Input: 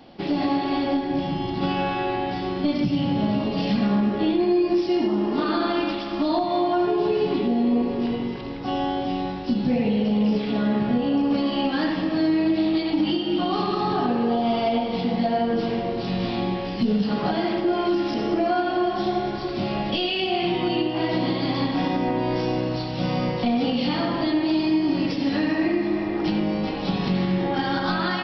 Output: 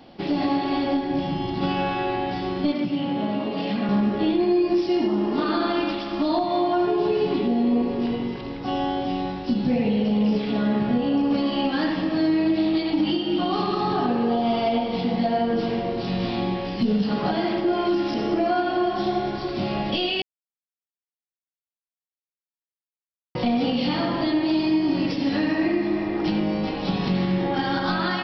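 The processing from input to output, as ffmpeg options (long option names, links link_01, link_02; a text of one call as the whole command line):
ffmpeg -i in.wav -filter_complex "[0:a]asettb=1/sr,asplit=3[link_01][link_02][link_03];[link_01]atrim=end=2.724[link_04];[link_02]atrim=start=2.72:end=3.89,asetpts=PTS-STARTPTS,afade=type=in:duration=0.004:curve=qsin,afade=type=out:start_time=1.166:duration=0.004:curve=qsin,acrossover=split=200 4200:gain=0.178 1 0.158[link_05][link_06][link_07];[link_05][link_06][link_07]amix=inputs=3:normalize=0[link_08];[link_03]atrim=start=3.886[link_09];[link_04][link_08]acrossfade=duration=0.004:curve1=hsin:curve2=qsin[link_10];[link_10][link_09]acrossfade=duration=0.004:curve1=qsin:curve2=hsin,asplit=3[link_11][link_12][link_13];[link_11]atrim=end=20.22,asetpts=PTS-STARTPTS,afade=type=out:start_time=20.216:duration=0.004:curve=hsin[link_14];[link_12]atrim=start=20.22:end=23.35,asetpts=PTS-STARTPTS,volume=0[link_15];[link_13]atrim=start=23.35,asetpts=PTS-STARTPTS,afade=type=in:duration=0.004:curve=hsin[link_16];[link_14][link_15][link_16]concat=n=3:v=0:a=1" out.wav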